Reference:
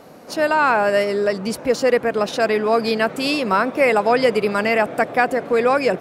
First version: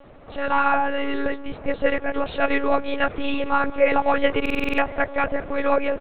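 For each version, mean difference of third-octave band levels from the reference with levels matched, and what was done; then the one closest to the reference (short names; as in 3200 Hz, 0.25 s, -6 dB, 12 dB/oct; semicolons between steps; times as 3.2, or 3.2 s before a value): 7.5 dB: comb 7.4 ms, depth 69%; speakerphone echo 0.19 s, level -21 dB; monotone LPC vocoder at 8 kHz 280 Hz; stuck buffer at 4.41, samples 2048, times 7; gain -4.5 dB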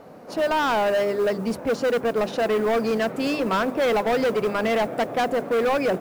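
4.0 dB: high shelf 2500 Hz -12 dB; notches 50/100/150/200/250/300/350/400 Hz; overloaded stage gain 18.5 dB; modulation noise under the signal 30 dB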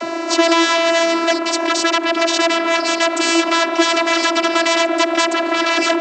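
13.0 dB: in parallel at +2 dB: compressor, threshold -26 dBFS, peak gain reduction 14 dB; on the sum: sine folder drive 12 dB, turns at -2 dBFS; vocoder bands 32, saw 333 Hz; spectral compressor 2:1; gain -12 dB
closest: second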